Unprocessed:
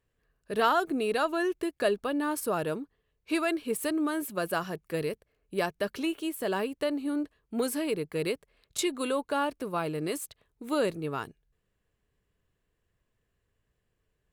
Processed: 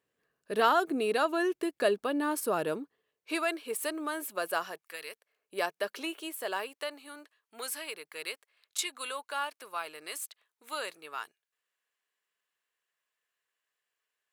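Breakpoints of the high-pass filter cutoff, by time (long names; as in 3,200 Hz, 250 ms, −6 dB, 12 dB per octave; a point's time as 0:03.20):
0:02.72 220 Hz
0:03.50 520 Hz
0:04.65 520 Hz
0:04.98 1,400 Hz
0:05.57 510 Hz
0:06.19 510 Hz
0:07.10 1,100 Hz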